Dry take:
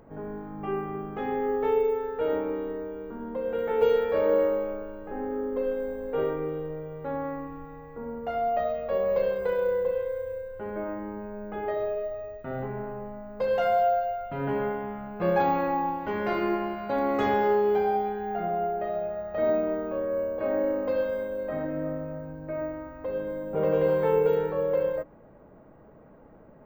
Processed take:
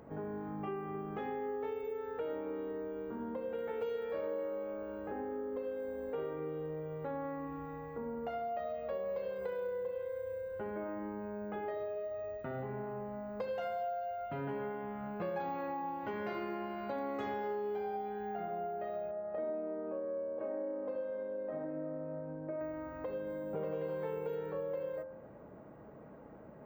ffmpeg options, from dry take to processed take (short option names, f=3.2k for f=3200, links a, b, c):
-filter_complex "[0:a]asettb=1/sr,asplit=3[a][b][c];[a]atrim=end=19.114[d];[b]atrim=start=19.11:end=22.61,asetpts=PTS-STARTPTS,afade=t=in:d=0.004:c=qsin,afade=t=out:st=3.496:d=0.004:c=qsin,bandpass=f=450:t=q:w=0.58[e];[c]atrim=start=22.606[f];[d][e]acrossfade=d=0.004:c1=hsin:c2=qsin[g];[g][f]acrossfade=d=0.004:c1=qsin:c2=hsin,highpass=68,bandreject=f=87.84:t=h:w=4,bandreject=f=175.68:t=h:w=4,bandreject=f=263.52:t=h:w=4,bandreject=f=351.36:t=h:w=4,bandreject=f=439.2:t=h:w=4,bandreject=f=527.04:t=h:w=4,bandreject=f=614.88:t=h:w=4,bandreject=f=702.72:t=h:w=4,bandreject=f=790.56:t=h:w=4,bandreject=f=878.4:t=h:w=4,bandreject=f=966.24:t=h:w=4,bandreject=f=1.05408k:t=h:w=4,bandreject=f=1.14192k:t=h:w=4,bandreject=f=1.22976k:t=h:w=4,bandreject=f=1.3176k:t=h:w=4,bandreject=f=1.40544k:t=h:w=4,bandreject=f=1.49328k:t=h:w=4,bandreject=f=1.58112k:t=h:w=4,acompressor=threshold=-38dB:ratio=4"